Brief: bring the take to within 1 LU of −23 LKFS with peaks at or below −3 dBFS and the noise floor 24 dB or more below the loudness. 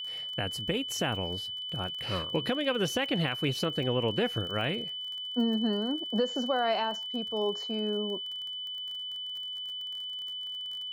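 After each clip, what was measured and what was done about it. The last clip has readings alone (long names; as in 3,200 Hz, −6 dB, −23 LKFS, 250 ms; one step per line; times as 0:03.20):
crackle rate 32 per second; interfering tone 3,000 Hz; level of the tone −35 dBFS; integrated loudness −31.0 LKFS; sample peak −17.0 dBFS; target loudness −23.0 LKFS
→ click removal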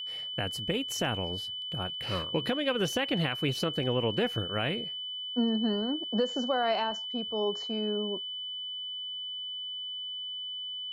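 crackle rate 0 per second; interfering tone 3,000 Hz; level of the tone −35 dBFS
→ notch filter 3,000 Hz, Q 30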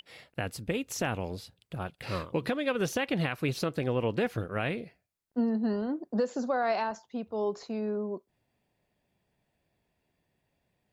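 interfering tone none found; integrated loudness −32.0 LKFS; sample peak −18.0 dBFS; target loudness −23.0 LKFS
→ level +9 dB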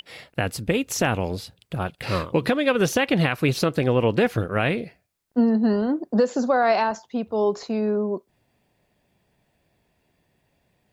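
integrated loudness −23.0 LKFS; sample peak −9.0 dBFS; background noise floor −70 dBFS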